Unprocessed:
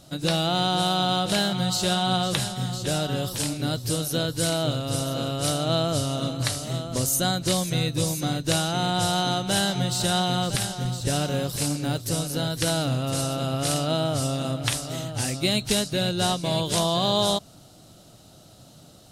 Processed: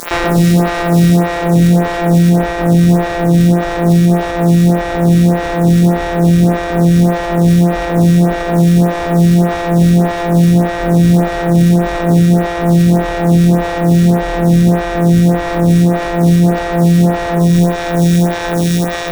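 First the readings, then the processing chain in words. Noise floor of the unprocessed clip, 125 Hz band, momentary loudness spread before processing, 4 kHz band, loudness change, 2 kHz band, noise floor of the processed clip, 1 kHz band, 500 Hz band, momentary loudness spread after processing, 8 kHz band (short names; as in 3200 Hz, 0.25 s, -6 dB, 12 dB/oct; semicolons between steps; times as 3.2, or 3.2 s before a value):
-50 dBFS, +17.0 dB, 5 LU, -2.5 dB, +13.5 dB, +11.5 dB, -19 dBFS, +9.5 dB, +12.5 dB, 3 LU, 0.0 dB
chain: sample sorter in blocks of 256 samples; high shelf 2700 Hz +9.5 dB; notch 490 Hz, Q 16; fuzz box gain 47 dB, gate -46 dBFS; diffused feedback echo 1.099 s, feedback 41%, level -8 dB; digital reverb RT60 1.2 s, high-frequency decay 0.3×, pre-delay 25 ms, DRR 2.5 dB; maximiser +10 dB; photocell phaser 1.7 Hz; gain -1 dB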